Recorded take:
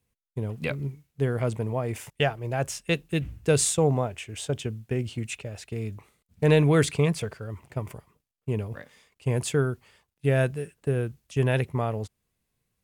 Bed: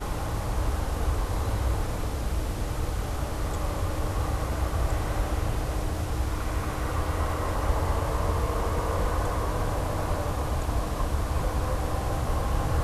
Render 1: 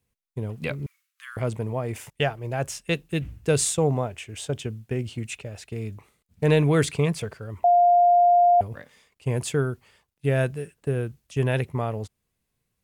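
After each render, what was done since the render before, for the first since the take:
0:00.86–0:01.37: Butterworth high-pass 1,100 Hz 96 dB per octave
0:07.64–0:08.61: beep over 703 Hz −13.5 dBFS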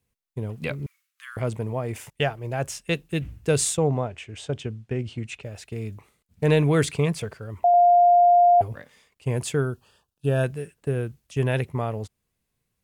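0:03.77–0:05.43: high-frequency loss of the air 71 metres
0:07.73–0:08.72: comb filter 7.5 ms
0:09.65–0:10.44: Butterworth band-reject 2,100 Hz, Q 2.4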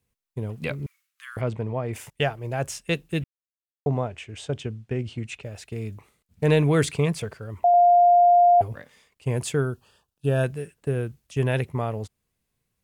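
0:01.41–0:01.93: low-pass filter 4,200 Hz
0:03.24–0:03.86: silence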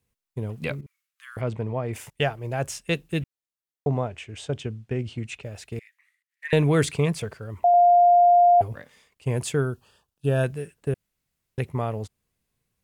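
0:00.81–0:01.56: fade in, from −15 dB
0:05.79–0:06.53: four-pole ladder high-pass 1,800 Hz, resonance 85%
0:10.94–0:11.58: fill with room tone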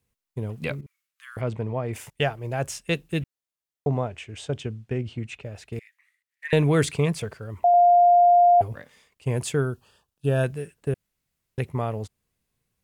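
0:04.98–0:05.73: high-shelf EQ 4,600 Hz −7.5 dB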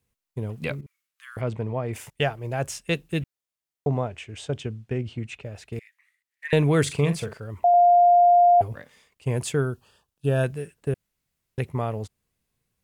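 0:06.82–0:07.40: double-tracking delay 42 ms −10 dB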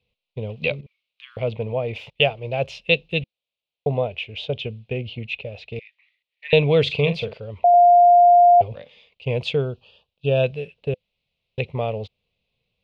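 drawn EQ curve 210 Hz 0 dB, 320 Hz −6 dB, 510 Hz +9 dB, 1,700 Hz −11 dB, 2,500 Hz +12 dB, 3,900 Hz +9 dB, 8,200 Hz −27 dB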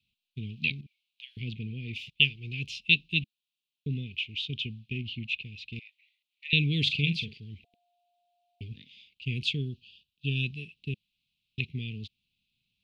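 inverse Chebyshev band-stop filter 540–1,400 Hz, stop band 50 dB
low-shelf EQ 160 Hz −10 dB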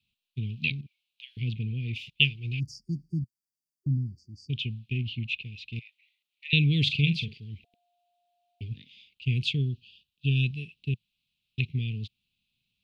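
0:02.59–0:04.50: time-frequency box erased 380–4,500 Hz
dynamic equaliser 120 Hz, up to +7 dB, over −46 dBFS, Q 1.6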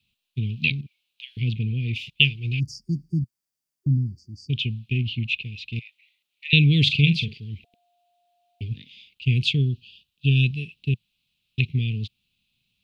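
level +6 dB
brickwall limiter −2 dBFS, peak gain reduction 2.5 dB

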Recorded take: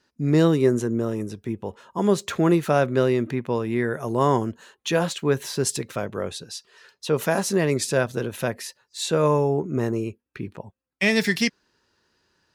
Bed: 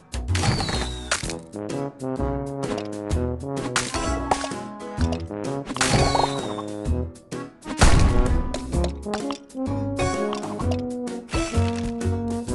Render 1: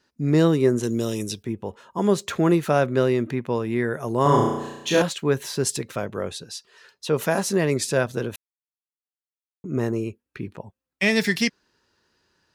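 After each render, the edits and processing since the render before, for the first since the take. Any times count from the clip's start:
0:00.83–0:01.43: high shelf with overshoot 2,300 Hz +13.5 dB, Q 1.5
0:04.22–0:05.02: flutter between parallel walls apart 5.8 metres, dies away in 0.97 s
0:08.36–0:09.64: silence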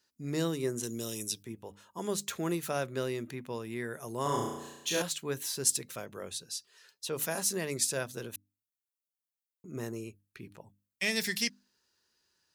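first-order pre-emphasis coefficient 0.8
mains-hum notches 50/100/150/200/250/300 Hz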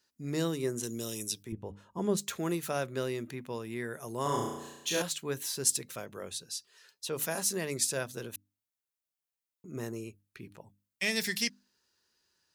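0:01.52–0:02.17: spectral tilt −3 dB per octave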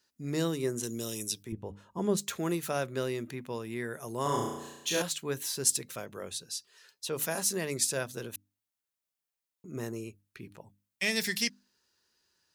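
level +1 dB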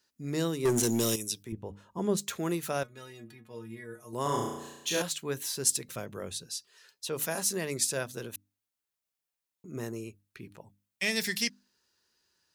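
0:00.65–0:01.16: leveller curve on the samples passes 3
0:02.83–0:04.13: stiff-string resonator 110 Hz, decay 0.28 s, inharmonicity 0.008
0:05.88–0:06.48: low-shelf EQ 240 Hz +7.5 dB

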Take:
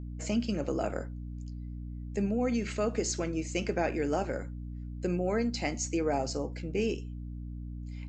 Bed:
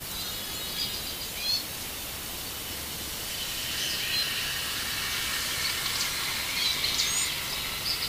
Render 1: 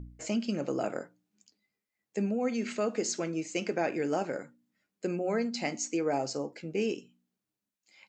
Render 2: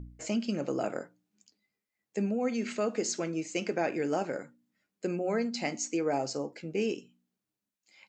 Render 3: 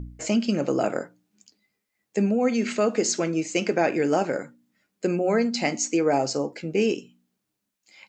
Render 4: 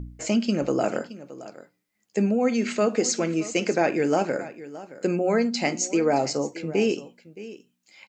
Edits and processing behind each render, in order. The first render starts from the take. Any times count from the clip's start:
hum removal 60 Hz, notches 5
no processing that can be heard
level +8 dB
single-tap delay 620 ms −16.5 dB

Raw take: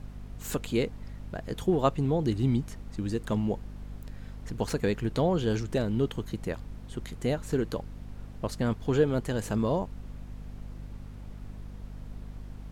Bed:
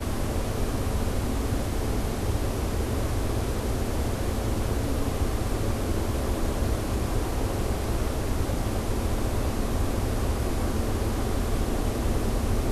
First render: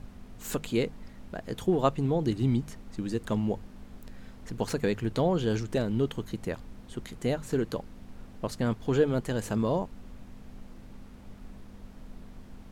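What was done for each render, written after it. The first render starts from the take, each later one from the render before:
mains-hum notches 50/100/150 Hz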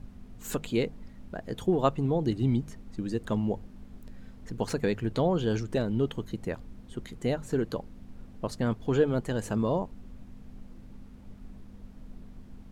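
broadband denoise 6 dB, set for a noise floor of −48 dBFS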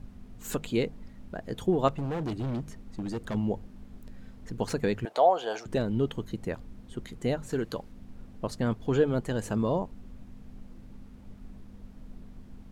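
0:01.88–0:03.35: hard clipping −29 dBFS
0:05.05–0:05.66: high-pass with resonance 700 Hz, resonance Q 4.4
0:07.49–0:07.92: tilt shelving filter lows −3 dB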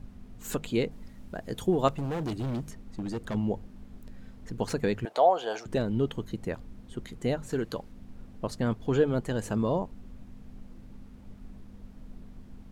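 0:00.91–0:02.71: high-shelf EQ 5,400 Hz +7.5 dB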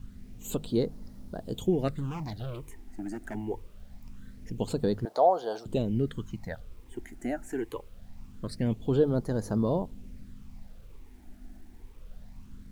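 all-pass phaser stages 8, 0.24 Hz, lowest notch 140–2,700 Hz
bit reduction 11 bits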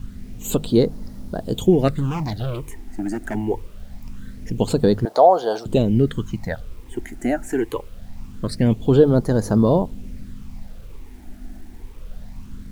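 level +11 dB
brickwall limiter −3 dBFS, peak gain reduction 2.5 dB

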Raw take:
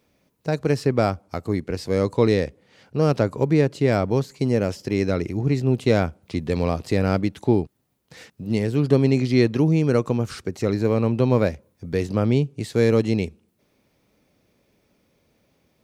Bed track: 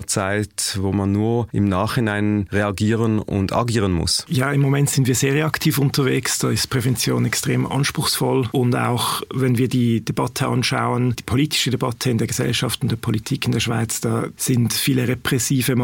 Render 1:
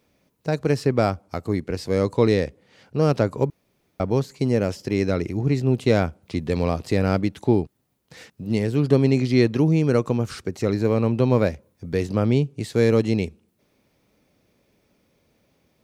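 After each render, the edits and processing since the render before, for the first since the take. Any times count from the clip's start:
0:03.50–0:04.00: fill with room tone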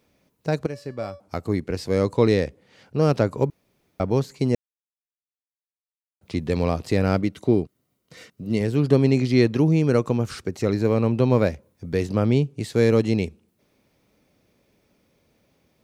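0:00.66–0:01.20: tuned comb filter 570 Hz, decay 0.34 s, mix 80%
0:04.55–0:06.21: silence
0:07.22–0:08.61: notch comb filter 840 Hz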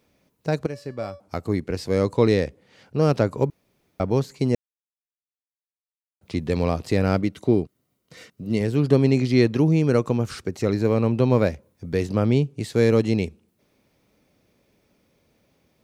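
no processing that can be heard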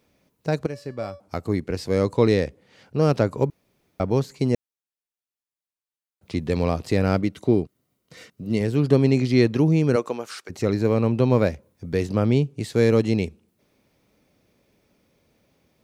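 0:09.95–0:10.49: high-pass filter 300 Hz → 850 Hz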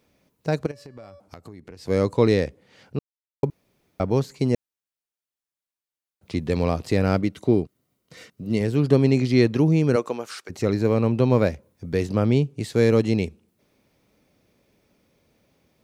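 0:00.71–0:01.88: downward compressor 8 to 1, threshold −38 dBFS
0:02.99–0:03.43: silence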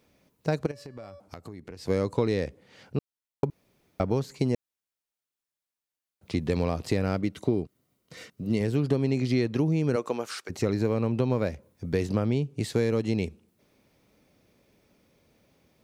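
downward compressor, threshold −21 dBFS, peak gain reduction 10 dB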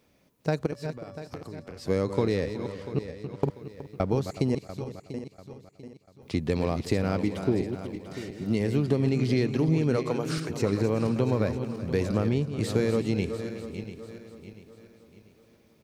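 feedback delay that plays each chunk backwards 346 ms, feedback 60%, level −9 dB
single-tap delay 370 ms −15.5 dB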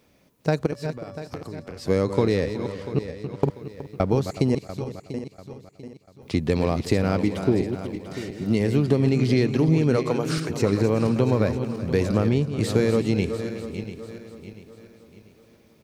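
level +4.5 dB

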